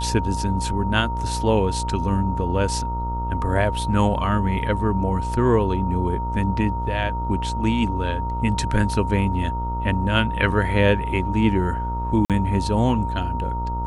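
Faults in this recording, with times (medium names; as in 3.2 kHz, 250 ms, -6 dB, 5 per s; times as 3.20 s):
buzz 60 Hz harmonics 23 -27 dBFS
whine 930 Hz -27 dBFS
12.25–12.30 s: dropout 47 ms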